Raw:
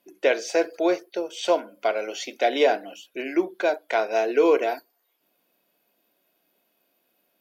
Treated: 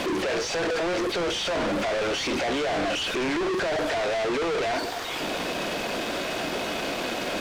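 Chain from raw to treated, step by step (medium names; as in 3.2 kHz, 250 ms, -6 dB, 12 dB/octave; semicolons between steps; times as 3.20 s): one-bit comparator; distance through air 110 m; trim +1 dB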